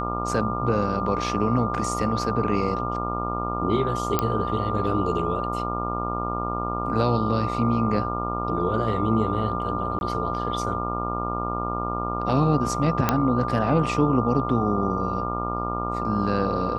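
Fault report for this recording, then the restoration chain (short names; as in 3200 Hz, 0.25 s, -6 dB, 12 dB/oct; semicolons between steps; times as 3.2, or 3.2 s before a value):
buzz 60 Hz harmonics 23 -30 dBFS
tone 1200 Hz -29 dBFS
4.19 pop -7 dBFS
9.99–10.01 gap 21 ms
13.09 pop -5 dBFS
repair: de-click; de-hum 60 Hz, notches 23; notch 1200 Hz, Q 30; interpolate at 9.99, 21 ms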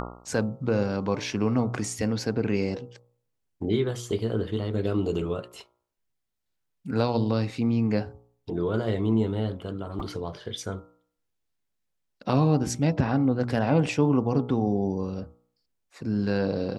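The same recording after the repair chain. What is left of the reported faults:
none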